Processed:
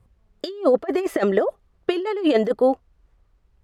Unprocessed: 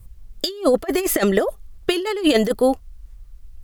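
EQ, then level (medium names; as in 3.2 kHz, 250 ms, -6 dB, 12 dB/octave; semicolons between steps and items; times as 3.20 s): band-pass filter 610 Hz, Q 0.52; 0.0 dB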